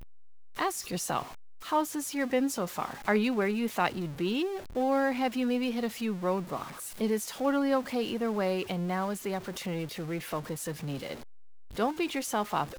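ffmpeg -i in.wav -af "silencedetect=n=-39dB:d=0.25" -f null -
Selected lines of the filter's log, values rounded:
silence_start: 0.00
silence_end: 0.59 | silence_duration: 0.59
silence_start: 1.23
silence_end: 1.66 | silence_duration: 0.43
silence_start: 11.15
silence_end: 11.77 | silence_duration: 0.62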